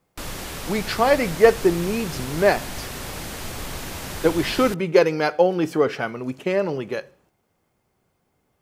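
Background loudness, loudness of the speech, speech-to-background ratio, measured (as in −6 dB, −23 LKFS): −32.5 LKFS, −21.5 LKFS, 11.0 dB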